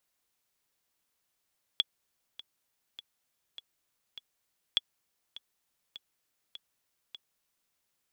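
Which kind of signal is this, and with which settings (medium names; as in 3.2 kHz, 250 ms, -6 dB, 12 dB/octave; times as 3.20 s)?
metronome 101 bpm, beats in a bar 5, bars 2, 3.38 kHz, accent 18.5 dB -12 dBFS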